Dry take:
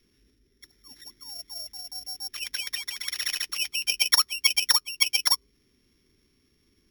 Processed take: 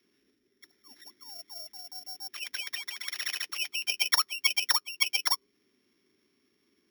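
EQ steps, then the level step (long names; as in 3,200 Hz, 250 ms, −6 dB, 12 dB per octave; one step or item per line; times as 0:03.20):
high-pass filter 280 Hz 12 dB per octave
parametric band 9,200 Hz −7 dB 2.5 octaves
notch filter 480 Hz, Q 12
0.0 dB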